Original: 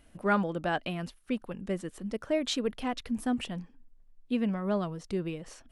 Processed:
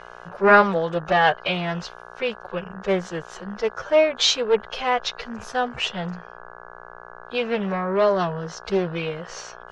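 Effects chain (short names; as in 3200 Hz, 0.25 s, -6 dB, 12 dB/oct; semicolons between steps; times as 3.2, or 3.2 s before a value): dynamic EQ 130 Hz, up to +4 dB, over -44 dBFS, Q 0.92; time stretch by phase-locked vocoder 1.7×; buzz 60 Hz, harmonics 28, -54 dBFS 0 dB/oct; EQ curve 180 Hz 0 dB, 270 Hz -15 dB, 390 Hz +8 dB, 6400 Hz +11 dB, 9200 Hz -12 dB; Doppler distortion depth 0.26 ms; gain +3.5 dB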